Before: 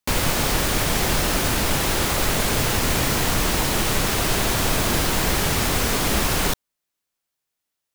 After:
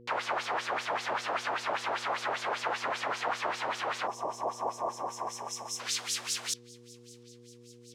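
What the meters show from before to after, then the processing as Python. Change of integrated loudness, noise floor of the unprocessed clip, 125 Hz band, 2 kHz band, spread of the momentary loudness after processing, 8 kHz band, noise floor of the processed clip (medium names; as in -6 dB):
-12.5 dB, -82 dBFS, -29.0 dB, -10.5 dB, 19 LU, -15.0 dB, -54 dBFS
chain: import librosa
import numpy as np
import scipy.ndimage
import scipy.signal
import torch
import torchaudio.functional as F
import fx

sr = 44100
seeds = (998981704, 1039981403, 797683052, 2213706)

y = fx.spec_box(x, sr, start_s=4.07, length_s=1.73, low_hz=1200.0, high_hz=5100.0, gain_db=-22)
y = fx.filter_sweep_bandpass(y, sr, from_hz=990.0, to_hz=7000.0, start_s=4.94, end_s=6.07, q=0.84)
y = fx.echo_wet_highpass(y, sr, ms=694, feedback_pct=69, hz=3500.0, wet_db=-21)
y = fx.filter_lfo_bandpass(y, sr, shape='sine', hz=5.1, low_hz=600.0, high_hz=6400.0, q=1.6)
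y = fx.dmg_buzz(y, sr, base_hz=120.0, harmonics=4, level_db=-56.0, tilt_db=0, odd_only=False)
y = F.gain(torch.from_numpy(y), 1.5).numpy()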